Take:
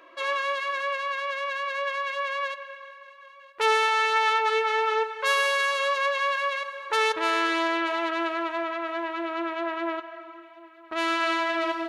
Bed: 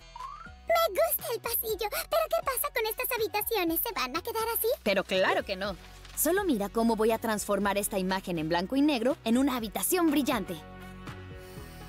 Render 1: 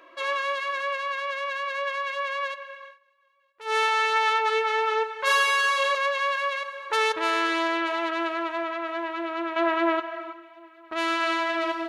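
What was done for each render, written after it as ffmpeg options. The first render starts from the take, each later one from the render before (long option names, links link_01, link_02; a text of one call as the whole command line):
ffmpeg -i in.wav -filter_complex "[0:a]asettb=1/sr,asplit=3[link_01][link_02][link_03];[link_01]atrim=end=5.184[link_04];[link_02]atrim=start=5.18:end=5.95,asetpts=PTS-STARTPTS,afade=type=in:duration=0.004:curve=qsin,afade=type=out:start_time=0.766:duration=0.004:curve=qsin,asplit=2[link_05][link_06];[link_06]adelay=44,volume=-2dB[link_07];[link_05][link_07]amix=inputs=2:normalize=0,atrim=end_sample=33957[link_08];[link_03]atrim=start=5.946[link_09];[link_04][link_08]acrossfade=duration=0.004:curve1=hsin:curve2=qsin[link_10];[link_10][link_09]acrossfade=duration=0.004:curve1=qsin:curve2=hsin,asettb=1/sr,asplit=3[link_11][link_12][link_13];[link_11]atrim=end=9.564[link_14];[link_12]atrim=start=9.56:end=10.33,asetpts=PTS-STARTPTS,afade=type=in:duration=0.004:curve=qsin,afade=type=out:start_time=0.766:duration=0.004:curve=qsin,acontrast=66[link_15];[link_13]atrim=start=10.326[link_16];[link_14][link_15]acrossfade=duration=0.004:curve1=hsin:curve2=qsin[link_17];[link_17][link_16]acrossfade=duration=0.004:curve1=qsin:curve2=hsin,asplit=3[link_18][link_19][link_20];[link_18]atrim=end=2.99,asetpts=PTS-STARTPTS,afade=type=out:start_time=2.86:duration=0.13:silence=0.125893[link_21];[link_19]atrim=start=2.99:end=3.65,asetpts=PTS-STARTPTS,volume=-18dB[link_22];[link_20]atrim=start=3.65,asetpts=PTS-STARTPTS,afade=type=in:duration=0.13:silence=0.125893[link_23];[link_21][link_22][link_23]concat=n=3:v=0:a=1" out.wav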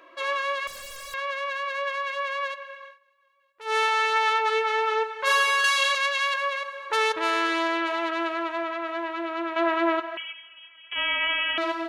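ffmpeg -i in.wav -filter_complex "[0:a]asettb=1/sr,asplit=3[link_01][link_02][link_03];[link_01]atrim=end=0.674[link_04];[link_02]atrim=start=0.67:end=1.14,asetpts=PTS-STARTPTS,afade=type=in:duration=0.004:curve=qsin,afade=type=out:start_time=0.466:duration=0.004:curve=qsin,aeval=exprs='0.0178*(abs(mod(val(0)/0.0178+3,4)-2)-1)':channel_layout=same[link_05];[link_03]atrim=start=1.136[link_06];[link_04][link_05]acrossfade=duration=0.004:curve1=hsin:curve2=qsin[link_07];[link_07][link_06]acrossfade=duration=0.004:curve1=qsin:curve2=hsin,asettb=1/sr,asplit=3[link_08][link_09][link_10];[link_08]atrim=end=5.644[link_11];[link_09]atrim=start=5.64:end=6.34,asetpts=PTS-STARTPTS,afade=type=in:duration=0.004:curve=qsin,afade=type=out:start_time=0.696:duration=0.004:curve=qsin,tiltshelf=frequency=1400:gain=-8.5[link_12];[link_10]atrim=start=6.336[link_13];[link_11][link_12]acrossfade=duration=0.004:curve1=hsin:curve2=qsin[link_14];[link_14][link_13]acrossfade=duration=0.004:curve1=qsin:curve2=hsin,asettb=1/sr,asplit=3[link_15][link_16][link_17];[link_15]atrim=end=10.174[link_18];[link_16]atrim=start=10.17:end=11.58,asetpts=PTS-STARTPTS,afade=type=in:duration=0.004:curve=qsin,afade=type=out:start_time=1.406:duration=0.004:curve=qsin,lowpass=frequency=3100:width_type=q:width=0.5098,lowpass=frequency=3100:width_type=q:width=0.6013,lowpass=frequency=3100:width_type=q:width=0.9,lowpass=frequency=3100:width_type=q:width=2.563,afreqshift=-3600[link_19];[link_17]atrim=start=11.576[link_20];[link_18][link_19]acrossfade=duration=0.004:curve1=hsin:curve2=qsin[link_21];[link_21][link_20]acrossfade=duration=0.004:curve1=qsin:curve2=hsin" out.wav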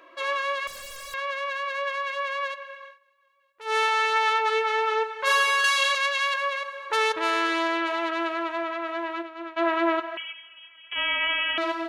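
ffmpeg -i in.wav -filter_complex "[0:a]asplit=3[link_01][link_02][link_03];[link_01]afade=type=out:start_time=9.21:duration=0.02[link_04];[link_02]agate=range=-33dB:threshold=-24dB:ratio=3:release=100:detection=peak,afade=type=in:start_time=9.21:duration=0.02,afade=type=out:start_time=9.72:duration=0.02[link_05];[link_03]afade=type=in:start_time=9.72:duration=0.02[link_06];[link_04][link_05][link_06]amix=inputs=3:normalize=0" out.wav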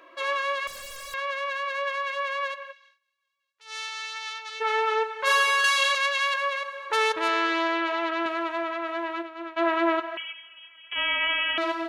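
ffmpeg -i in.wav -filter_complex "[0:a]asplit=3[link_01][link_02][link_03];[link_01]afade=type=out:start_time=2.71:duration=0.02[link_04];[link_02]bandpass=frequency=5500:width_type=q:width=1.4,afade=type=in:start_time=2.71:duration=0.02,afade=type=out:start_time=4.6:duration=0.02[link_05];[link_03]afade=type=in:start_time=4.6:duration=0.02[link_06];[link_04][link_05][link_06]amix=inputs=3:normalize=0,asettb=1/sr,asplit=3[link_07][link_08][link_09];[link_07]atrim=end=7.284[link_10];[link_08]atrim=start=7.28:end=8.26,asetpts=PTS-STARTPTS,afade=type=in:duration=0.004:curve=qsin,afade=type=out:start_time=0.976:duration=0.004:curve=qsin,highpass=170,lowpass=5600[link_11];[link_09]atrim=start=8.256[link_12];[link_10][link_11]acrossfade=duration=0.004:curve1=hsin:curve2=qsin[link_13];[link_13][link_12]acrossfade=duration=0.004:curve1=qsin:curve2=hsin" out.wav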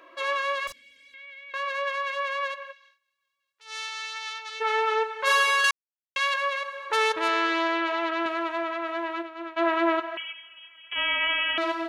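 ffmpeg -i in.wav -filter_complex "[0:a]asettb=1/sr,asplit=3[link_01][link_02][link_03];[link_01]atrim=end=0.724[link_04];[link_02]atrim=start=0.72:end=1.54,asetpts=PTS-STARTPTS,afade=type=in:duration=0.004:curve=qsin,afade=type=out:start_time=0.816:duration=0.004:curve=qsin,asplit=3[link_05][link_06][link_07];[link_05]bandpass=frequency=270:width_type=q:width=8,volume=0dB[link_08];[link_06]bandpass=frequency=2290:width_type=q:width=8,volume=-6dB[link_09];[link_07]bandpass=frequency=3010:width_type=q:width=8,volume=-9dB[link_10];[link_08][link_09][link_10]amix=inputs=3:normalize=0[link_11];[link_03]atrim=start=1.536[link_12];[link_04][link_11]acrossfade=duration=0.004:curve1=hsin:curve2=qsin[link_13];[link_13][link_12]acrossfade=duration=0.004:curve1=qsin:curve2=hsin,asplit=3[link_14][link_15][link_16];[link_14]atrim=end=5.71,asetpts=PTS-STARTPTS,afade=type=out:start_time=5.706:duration=0.004:curve=hsin[link_17];[link_15]atrim=start=5.71:end=6.16,asetpts=PTS-STARTPTS,volume=0[link_18];[link_16]atrim=start=6.16,asetpts=PTS-STARTPTS,afade=type=in:duration=0.004:curve=hsin[link_19];[link_17][link_18][link_19]concat=n=3:v=0:a=1" out.wav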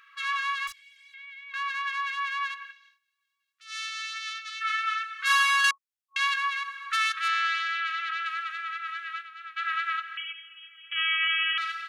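ffmpeg -i in.wav -af "afftfilt=real='re*(1-between(b*sr/4096,150,1100))':imag='im*(1-between(b*sr/4096,150,1100))':win_size=4096:overlap=0.75,bass=frequency=250:gain=-10,treble=frequency=4000:gain=0" out.wav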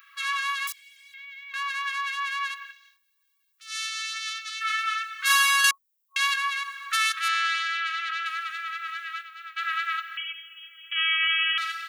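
ffmpeg -i in.wav -af "aemphasis=mode=production:type=bsi" out.wav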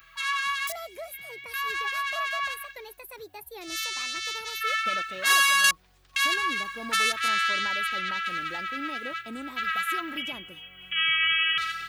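ffmpeg -i in.wav -i bed.wav -filter_complex "[1:a]volume=-13.5dB[link_01];[0:a][link_01]amix=inputs=2:normalize=0" out.wav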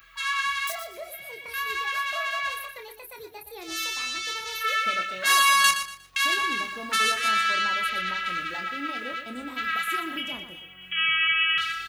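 ffmpeg -i in.wav -filter_complex "[0:a]asplit=2[link_01][link_02];[link_02]adelay=28,volume=-7dB[link_03];[link_01][link_03]amix=inputs=2:normalize=0,aecho=1:1:119|238|357:0.316|0.0885|0.0248" out.wav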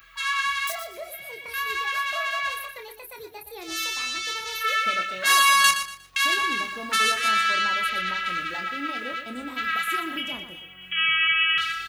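ffmpeg -i in.wav -af "volume=1.5dB" out.wav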